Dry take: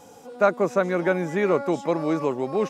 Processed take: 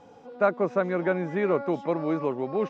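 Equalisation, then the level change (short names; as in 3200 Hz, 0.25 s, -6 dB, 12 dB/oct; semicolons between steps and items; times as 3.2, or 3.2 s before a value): air absorption 210 m; -2.5 dB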